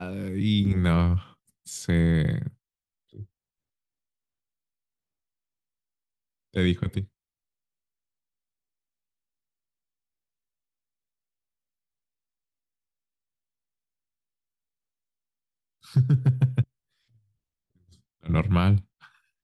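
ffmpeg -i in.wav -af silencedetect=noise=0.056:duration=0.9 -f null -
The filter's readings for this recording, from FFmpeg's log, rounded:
silence_start: 2.47
silence_end: 6.56 | silence_duration: 4.08
silence_start: 7.01
silence_end: 15.96 | silence_duration: 8.95
silence_start: 16.62
silence_end: 18.30 | silence_duration: 1.68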